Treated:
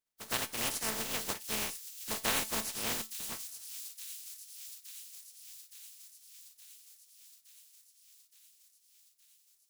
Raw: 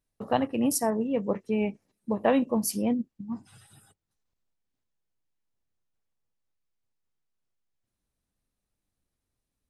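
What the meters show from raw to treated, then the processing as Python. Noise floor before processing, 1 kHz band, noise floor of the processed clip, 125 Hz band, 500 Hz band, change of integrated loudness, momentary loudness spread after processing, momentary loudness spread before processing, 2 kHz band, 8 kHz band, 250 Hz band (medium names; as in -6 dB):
-85 dBFS, -8.5 dB, -69 dBFS, -10.0 dB, -15.5 dB, -7.5 dB, 20 LU, 13 LU, +2.0 dB, +1.0 dB, -19.0 dB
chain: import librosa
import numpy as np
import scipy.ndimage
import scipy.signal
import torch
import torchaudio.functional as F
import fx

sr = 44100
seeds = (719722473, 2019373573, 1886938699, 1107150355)

y = fx.spec_flatten(x, sr, power=0.14)
y = fx.comb_fb(y, sr, f0_hz=220.0, decay_s=0.25, harmonics='all', damping=0.0, mix_pct=60)
y = fx.echo_wet_highpass(y, sr, ms=868, feedback_pct=68, hz=4900.0, wet_db=-7.5)
y = F.gain(torch.from_numpy(y), -2.5).numpy()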